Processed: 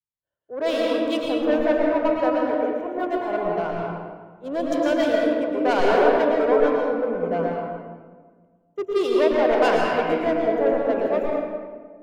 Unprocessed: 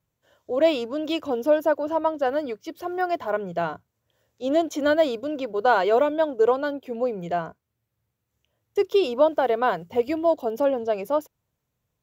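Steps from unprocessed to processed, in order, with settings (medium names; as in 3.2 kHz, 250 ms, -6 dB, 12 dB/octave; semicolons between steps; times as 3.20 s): local Wiener filter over 9 samples; 9.52–10.08 s: peaking EQ 2.5 kHz +13 dB 1.4 oct; saturation -18.5 dBFS, distortion -11 dB; reverberation RT60 2.4 s, pre-delay 104 ms, DRR -3.5 dB; three bands expanded up and down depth 70%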